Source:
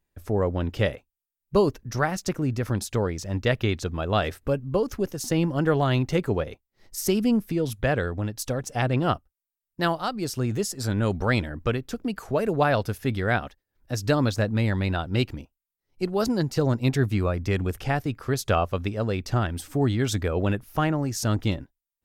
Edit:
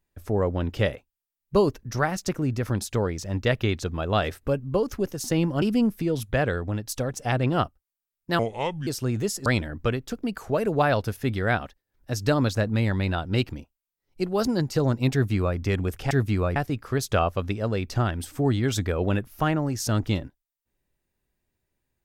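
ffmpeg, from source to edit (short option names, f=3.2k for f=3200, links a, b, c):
-filter_complex "[0:a]asplit=7[a][b][c][d][e][f][g];[a]atrim=end=5.622[h];[b]atrim=start=7.118:end=9.894[i];[c]atrim=start=9.89:end=10.22,asetpts=PTS-STARTPTS,asetrate=30429,aresample=44100,atrim=end_sample=21091,asetpts=PTS-STARTPTS[j];[d]atrim=start=10.216:end=10.812[k];[e]atrim=start=11.268:end=17.922[l];[f]atrim=start=16.938:end=17.392[m];[g]atrim=start=17.918[n];[h][i]acrossfade=d=0.004:c1=hsin:c2=hsin[o];[o][j]acrossfade=d=0.004:c1=hsin:c2=hsin[p];[p][k]acrossfade=d=0.004:c1=hsin:c2=hsin[q];[q][l]acrossfade=d=0.004:c1=hsin:c2=hsin[r];[r][m]acrossfade=d=0.004:c1=hsin:c2=hsin[s];[s][n]acrossfade=d=0.004:c1=hsin:c2=hsin"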